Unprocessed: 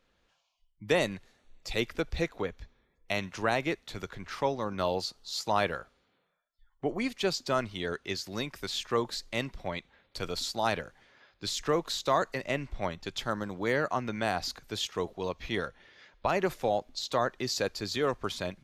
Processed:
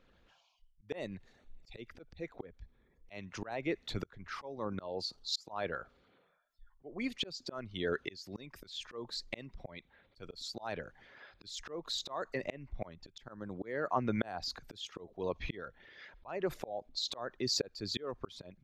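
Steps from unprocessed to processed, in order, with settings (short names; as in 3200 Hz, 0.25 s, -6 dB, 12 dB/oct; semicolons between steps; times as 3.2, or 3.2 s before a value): formant sharpening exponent 1.5; auto swell 0.68 s; gain +5 dB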